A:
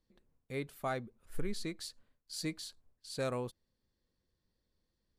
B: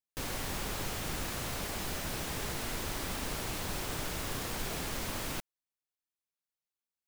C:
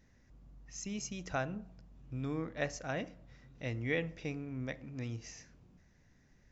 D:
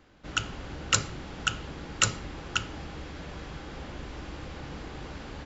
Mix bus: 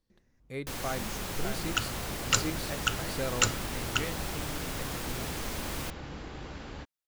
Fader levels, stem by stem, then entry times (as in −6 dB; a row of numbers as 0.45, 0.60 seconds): +1.0, 0.0, −5.5, −1.5 decibels; 0.00, 0.50, 0.10, 1.40 seconds